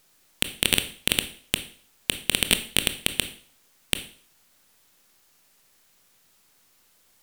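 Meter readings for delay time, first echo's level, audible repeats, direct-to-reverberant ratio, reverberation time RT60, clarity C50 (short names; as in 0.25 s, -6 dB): none, none, none, 9.0 dB, 0.50 s, 13.0 dB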